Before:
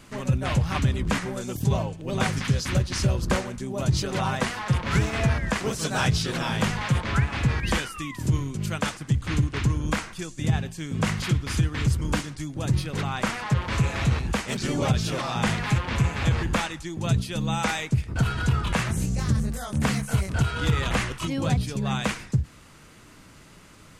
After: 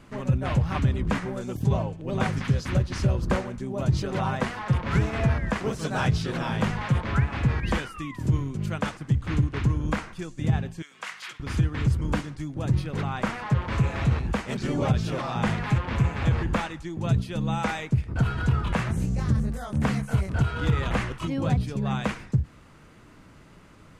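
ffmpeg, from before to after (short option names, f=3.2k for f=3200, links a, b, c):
-filter_complex "[0:a]asettb=1/sr,asplit=3[a][b][c];[a]atrim=end=10.824[d];[b]atrim=start=10.82:end=11.4,asetpts=PTS-STARTPTS,afade=t=in:d=0.004:c=qsin,afade=t=out:st=0.576:d=0.004:c=qsin,highpass=1.4k[e];[c]atrim=start=11.396[f];[d][e]acrossfade=d=0.004:c1=hsin:c2=qsin[g];[g][f]acrossfade=d=0.004:c1=qsin:c2=hsin,highshelf=f=3k:g=-12"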